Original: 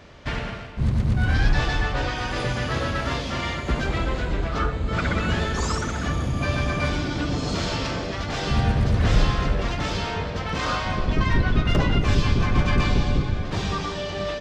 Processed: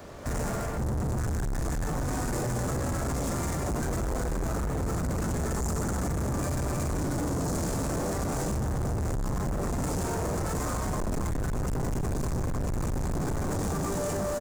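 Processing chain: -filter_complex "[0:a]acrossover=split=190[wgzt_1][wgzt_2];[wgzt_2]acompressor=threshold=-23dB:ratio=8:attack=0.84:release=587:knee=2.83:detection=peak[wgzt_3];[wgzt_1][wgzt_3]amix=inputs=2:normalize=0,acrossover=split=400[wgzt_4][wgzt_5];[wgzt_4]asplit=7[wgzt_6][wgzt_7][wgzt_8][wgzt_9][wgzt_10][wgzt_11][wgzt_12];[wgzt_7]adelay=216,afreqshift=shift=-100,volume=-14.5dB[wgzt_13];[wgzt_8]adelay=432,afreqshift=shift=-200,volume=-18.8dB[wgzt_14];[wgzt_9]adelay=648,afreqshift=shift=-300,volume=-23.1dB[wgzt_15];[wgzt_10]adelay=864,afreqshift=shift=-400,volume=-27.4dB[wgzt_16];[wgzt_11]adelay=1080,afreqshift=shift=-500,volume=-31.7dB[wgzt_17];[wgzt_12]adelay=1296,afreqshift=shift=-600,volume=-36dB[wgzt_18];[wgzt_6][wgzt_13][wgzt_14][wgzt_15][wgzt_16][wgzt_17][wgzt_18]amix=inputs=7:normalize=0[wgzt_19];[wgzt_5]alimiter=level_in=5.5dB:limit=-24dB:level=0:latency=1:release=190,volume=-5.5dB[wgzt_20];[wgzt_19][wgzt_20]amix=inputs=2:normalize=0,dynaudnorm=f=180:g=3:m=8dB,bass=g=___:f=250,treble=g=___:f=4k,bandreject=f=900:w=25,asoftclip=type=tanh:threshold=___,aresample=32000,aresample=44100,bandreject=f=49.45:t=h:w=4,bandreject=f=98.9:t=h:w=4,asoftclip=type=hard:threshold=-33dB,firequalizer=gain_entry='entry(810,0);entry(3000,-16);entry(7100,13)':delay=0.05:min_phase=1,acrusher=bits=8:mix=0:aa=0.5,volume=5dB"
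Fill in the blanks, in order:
-4, -12, -23.5dB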